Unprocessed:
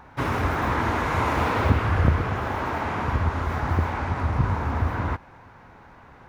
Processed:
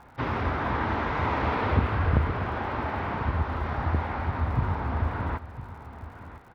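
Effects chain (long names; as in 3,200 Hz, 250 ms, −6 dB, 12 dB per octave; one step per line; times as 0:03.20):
low-pass filter 4,700 Hz 24 dB per octave
surface crackle 94 per second −46 dBFS
wrong playback speed 25 fps video run at 24 fps
single-tap delay 1,007 ms −14 dB
level −3.5 dB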